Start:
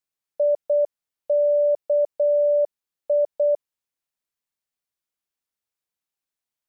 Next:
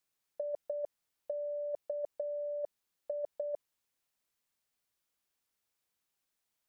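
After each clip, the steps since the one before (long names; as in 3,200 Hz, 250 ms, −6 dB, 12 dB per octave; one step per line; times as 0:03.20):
compressor whose output falls as the input rises −26 dBFS, ratio −0.5
level −7 dB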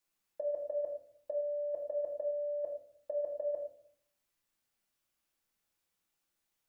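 convolution reverb RT60 0.60 s, pre-delay 3 ms, DRR −1.5 dB
level −2 dB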